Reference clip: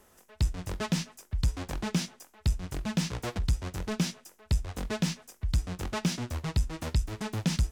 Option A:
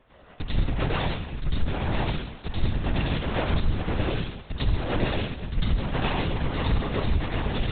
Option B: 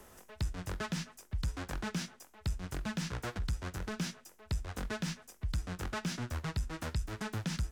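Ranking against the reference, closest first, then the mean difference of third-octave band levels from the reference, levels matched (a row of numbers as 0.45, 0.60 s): B, A; 3.0, 13.5 dB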